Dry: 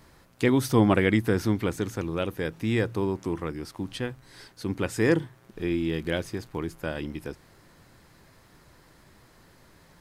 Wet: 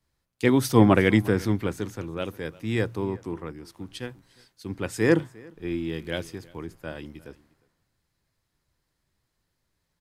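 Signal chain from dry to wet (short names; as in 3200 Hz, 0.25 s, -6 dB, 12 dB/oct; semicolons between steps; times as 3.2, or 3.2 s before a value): echo 0.356 s -18 dB; three-band expander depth 70%; gain -2 dB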